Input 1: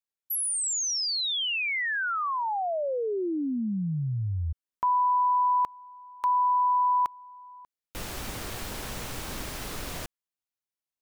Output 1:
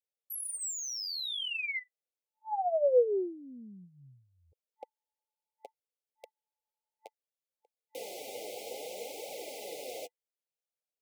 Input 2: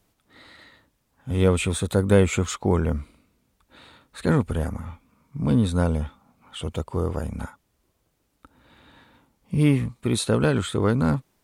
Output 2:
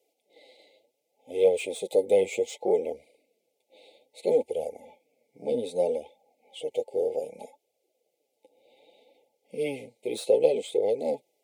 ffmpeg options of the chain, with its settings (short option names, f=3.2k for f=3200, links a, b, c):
-filter_complex "[0:a]afftfilt=real='re*(1-between(b*sr/4096,880,2000))':imag='im*(1-between(b*sr/4096,880,2000))':win_size=4096:overlap=0.75,acrossover=split=3000[a][b];[b]asoftclip=type=tanh:threshold=-28dB[c];[a][c]amix=inputs=2:normalize=0,flanger=delay=1.1:depth=9.2:regen=15:speed=0.64:shape=triangular,aeval=exprs='0.316*(cos(1*acos(clip(val(0)/0.316,-1,1)))-cos(1*PI/2))+0.0141*(cos(2*acos(clip(val(0)/0.316,-1,1)))-cos(2*PI/2))':c=same,highpass=f=490:t=q:w=4.3,volume=-3.5dB"